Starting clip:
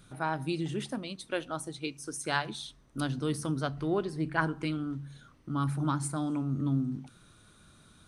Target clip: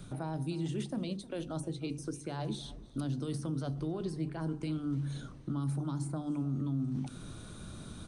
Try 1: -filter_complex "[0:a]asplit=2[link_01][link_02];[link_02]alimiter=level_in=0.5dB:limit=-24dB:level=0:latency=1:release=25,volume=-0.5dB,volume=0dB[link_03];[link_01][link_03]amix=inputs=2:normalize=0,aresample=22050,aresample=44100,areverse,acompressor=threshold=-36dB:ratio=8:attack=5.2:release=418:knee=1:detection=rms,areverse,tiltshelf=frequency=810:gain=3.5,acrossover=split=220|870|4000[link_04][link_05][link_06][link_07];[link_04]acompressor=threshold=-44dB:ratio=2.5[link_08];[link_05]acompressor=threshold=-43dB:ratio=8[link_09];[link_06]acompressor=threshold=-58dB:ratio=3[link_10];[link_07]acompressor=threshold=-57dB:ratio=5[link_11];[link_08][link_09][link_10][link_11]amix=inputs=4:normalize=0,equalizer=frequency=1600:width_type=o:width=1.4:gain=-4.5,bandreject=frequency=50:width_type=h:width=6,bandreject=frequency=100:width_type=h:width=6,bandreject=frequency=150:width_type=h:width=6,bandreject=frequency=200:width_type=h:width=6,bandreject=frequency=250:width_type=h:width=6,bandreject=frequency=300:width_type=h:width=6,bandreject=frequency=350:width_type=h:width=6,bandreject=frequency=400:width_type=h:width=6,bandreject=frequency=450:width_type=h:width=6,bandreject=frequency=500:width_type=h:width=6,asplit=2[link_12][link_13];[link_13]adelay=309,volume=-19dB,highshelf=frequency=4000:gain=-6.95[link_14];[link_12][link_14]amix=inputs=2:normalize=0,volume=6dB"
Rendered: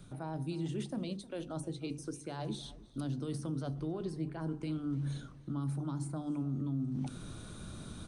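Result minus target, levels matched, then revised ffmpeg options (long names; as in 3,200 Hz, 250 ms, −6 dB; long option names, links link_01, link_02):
downward compressor: peak gain reduction +5.5 dB
-filter_complex "[0:a]asplit=2[link_01][link_02];[link_02]alimiter=level_in=0.5dB:limit=-24dB:level=0:latency=1:release=25,volume=-0.5dB,volume=0dB[link_03];[link_01][link_03]amix=inputs=2:normalize=0,aresample=22050,aresample=44100,areverse,acompressor=threshold=-29.5dB:ratio=8:attack=5.2:release=418:knee=1:detection=rms,areverse,tiltshelf=frequency=810:gain=3.5,acrossover=split=220|870|4000[link_04][link_05][link_06][link_07];[link_04]acompressor=threshold=-44dB:ratio=2.5[link_08];[link_05]acompressor=threshold=-43dB:ratio=8[link_09];[link_06]acompressor=threshold=-58dB:ratio=3[link_10];[link_07]acompressor=threshold=-57dB:ratio=5[link_11];[link_08][link_09][link_10][link_11]amix=inputs=4:normalize=0,equalizer=frequency=1600:width_type=o:width=1.4:gain=-4.5,bandreject=frequency=50:width_type=h:width=6,bandreject=frequency=100:width_type=h:width=6,bandreject=frequency=150:width_type=h:width=6,bandreject=frequency=200:width_type=h:width=6,bandreject=frequency=250:width_type=h:width=6,bandreject=frequency=300:width_type=h:width=6,bandreject=frequency=350:width_type=h:width=6,bandreject=frequency=400:width_type=h:width=6,bandreject=frequency=450:width_type=h:width=6,bandreject=frequency=500:width_type=h:width=6,asplit=2[link_12][link_13];[link_13]adelay=309,volume=-19dB,highshelf=frequency=4000:gain=-6.95[link_14];[link_12][link_14]amix=inputs=2:normalize=0,volume=6dB"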